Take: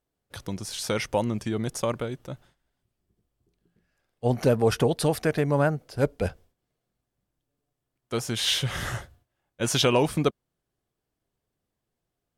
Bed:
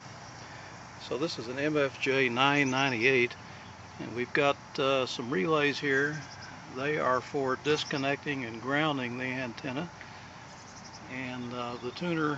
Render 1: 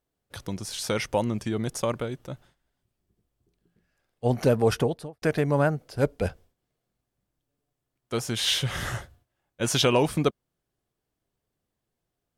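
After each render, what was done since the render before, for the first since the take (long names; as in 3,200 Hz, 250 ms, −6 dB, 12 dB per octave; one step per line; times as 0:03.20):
0:04.69–0:05.22: fade out and dull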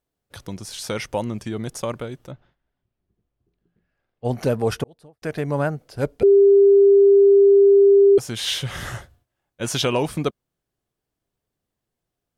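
0:02.31–0:04.25: high-frequency loss of the air 230 metres
0:04.84–0:05.50: fade in
0:06.23–0:08.18: beep over 398 Hz −9 dBFS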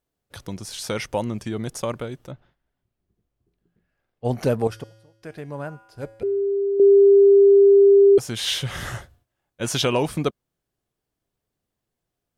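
0:04.67–0:06.80: tuned comb filter 110 Hz, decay 1.1 s, harmonics odd, mix 70%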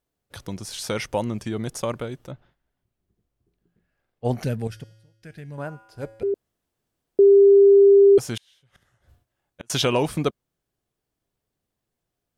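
0:04.43–0:05.58: drawn EQ curve 190 Hz 0 dB, 300 Hz −8 dB, 770 Hz −12 dB, 1,100 Hz −16 dB, 1,600 Hz −3 dB
0:06.34–0:07.19: fill with room tone
0:08.36–0:09.70: gate with flip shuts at −21 dBFS, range −36 dB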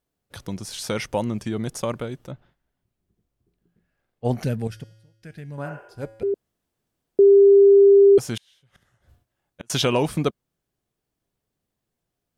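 0:05.68–0:05.91: healed spectral selection 340–3,100 Hz both
parametric band 190 Hz +2.5 dB 1 octave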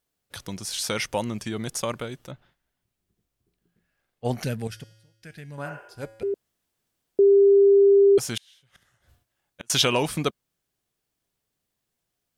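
tilt shelving filter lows −4.5 dB, about 1,100 Hz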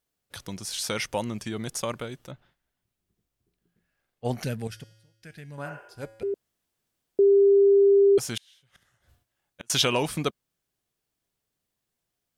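level −2 dB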